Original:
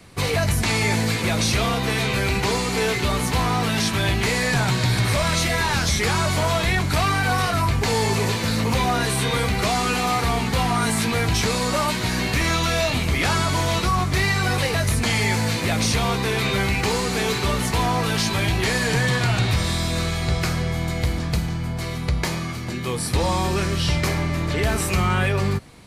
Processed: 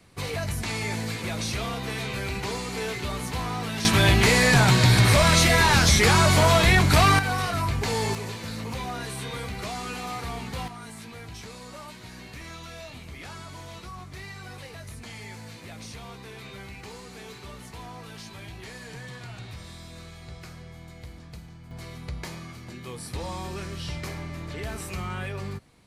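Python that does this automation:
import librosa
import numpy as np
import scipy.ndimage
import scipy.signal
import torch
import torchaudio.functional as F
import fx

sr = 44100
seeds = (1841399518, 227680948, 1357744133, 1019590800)

y = fx.gain(x, sr, db=fx.steps((0.0, -9.0), (3.85, 3.0), (7.19, -5.5), (8.15, -12.0), (10.68, -20.0), (21.71, -12.5)))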